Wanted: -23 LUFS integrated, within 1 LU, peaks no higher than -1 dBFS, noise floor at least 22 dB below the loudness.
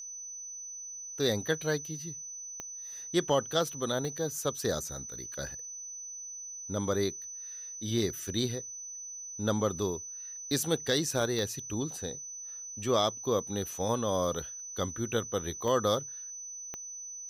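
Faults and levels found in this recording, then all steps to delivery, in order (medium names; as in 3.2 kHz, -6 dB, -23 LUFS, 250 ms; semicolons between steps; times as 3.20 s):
clicks found 5; steady tone 6 kHz; tone level -40 dBFS; loudness -33.0 LUFS; peak level -14.5 dBFS; loudness target -23.0 LUFS
-> de-click; band-stop 6 kHz, Q 30; trim +10 dB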